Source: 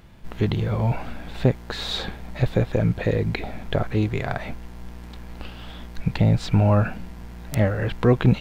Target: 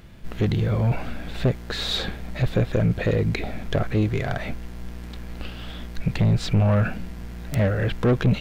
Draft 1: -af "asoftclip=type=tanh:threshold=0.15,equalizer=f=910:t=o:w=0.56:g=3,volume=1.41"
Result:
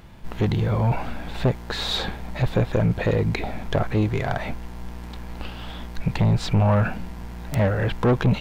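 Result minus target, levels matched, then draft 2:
1 kHz band +4.5 dB
-af "asoftclip=type=tanh:threshold=0.15,equalizer=f=910:t=o:w=0.56:g=-6,volume=1.41"

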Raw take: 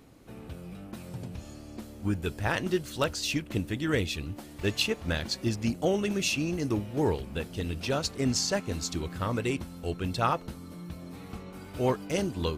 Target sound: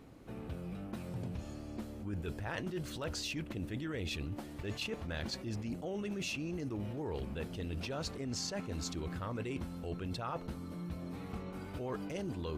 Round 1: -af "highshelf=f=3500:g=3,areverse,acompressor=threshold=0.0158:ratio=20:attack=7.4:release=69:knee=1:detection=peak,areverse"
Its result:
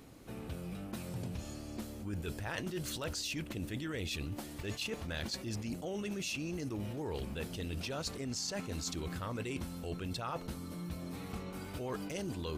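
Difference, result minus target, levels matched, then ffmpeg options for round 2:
8 kHz band +3.5 dB
-af "highshelf=f=3500:g=-8,areverse,acompressor=threshold=0.0158:ratio=20:attack=7.4:release=69:knee=1:detection=peak,areverse"

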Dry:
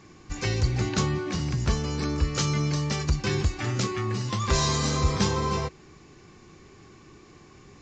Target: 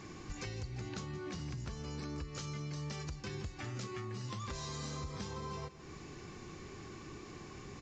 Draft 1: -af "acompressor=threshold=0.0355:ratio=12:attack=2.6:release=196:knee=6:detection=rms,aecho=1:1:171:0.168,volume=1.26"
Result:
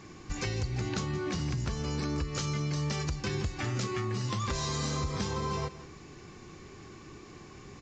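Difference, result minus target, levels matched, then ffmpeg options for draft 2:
compression: peak gain reduction -9.5 dB
-af "acompressor=threshold=0.0106:ratio=12:attack=2.6:release=196:knee=6:detection=rms,aecho=1:1:171:0.168,volume=1.26"

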